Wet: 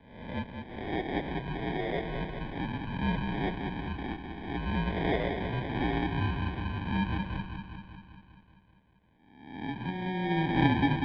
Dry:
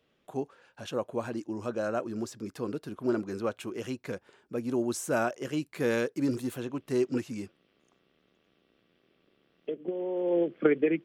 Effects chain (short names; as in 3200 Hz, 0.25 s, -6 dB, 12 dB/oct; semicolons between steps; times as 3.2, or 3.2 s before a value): spectral swells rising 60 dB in 0.88 s; dark delay 0.196 s, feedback 63%, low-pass 880 Hz, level -6 dB; sample-and-hold 30×; mistuned SSB -180 Hz 190–3600 Hz; gain -3 dB